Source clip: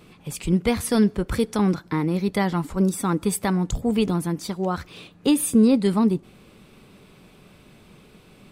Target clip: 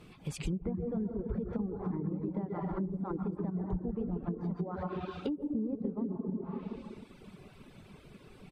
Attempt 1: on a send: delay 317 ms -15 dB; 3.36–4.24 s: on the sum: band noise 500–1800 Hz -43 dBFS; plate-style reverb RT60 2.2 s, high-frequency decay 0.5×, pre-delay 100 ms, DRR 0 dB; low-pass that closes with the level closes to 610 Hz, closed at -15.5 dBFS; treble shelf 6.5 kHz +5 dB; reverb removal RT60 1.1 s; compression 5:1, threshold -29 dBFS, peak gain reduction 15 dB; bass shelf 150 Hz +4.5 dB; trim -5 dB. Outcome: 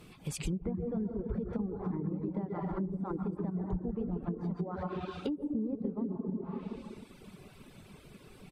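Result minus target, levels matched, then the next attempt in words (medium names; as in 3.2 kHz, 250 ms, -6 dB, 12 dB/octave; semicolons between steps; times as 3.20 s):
8 kHz band +5.0 dB
on a send: delay 317 ms -15 dB; 3.36–4.24 s: on the sum: band noise 500–1800 Hz -43 dBFS; plate-style reverb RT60 2.2 s, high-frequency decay 0.5×, pre-delay 100 ms, DRR 0 dB; low-pass that closes with the level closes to 610 Hz, closed at -15.5 dBFS; treble shelf 6.5 kHz -4.5 dB; reverb removal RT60 1.1 s; compression 5:1, threshold -29 dBFS, peak gain reduction 15 dB; bass shelf 150 Hz +4.5 dB; trim -5 dB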